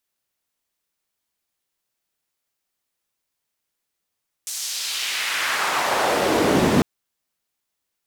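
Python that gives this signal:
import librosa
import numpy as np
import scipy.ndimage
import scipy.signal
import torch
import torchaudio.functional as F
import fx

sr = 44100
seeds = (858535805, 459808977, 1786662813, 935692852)

y = fx.riser_noise(sr, seeds[0], length_s=2.35, colour='white', kind='bandpass', start_hz=7400.0, end_hz=190.0, q=1.3, swell_db=27, law='exponential')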